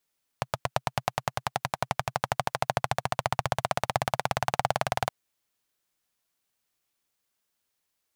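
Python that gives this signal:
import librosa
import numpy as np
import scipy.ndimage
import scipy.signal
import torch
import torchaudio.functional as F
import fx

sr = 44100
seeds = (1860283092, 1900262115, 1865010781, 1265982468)

y = fx.engine_single_rev(sr, seeds[0], length_s=4.67, rpm=1000, resonances_hz=(130.0, 730.0), end_rpm=2300)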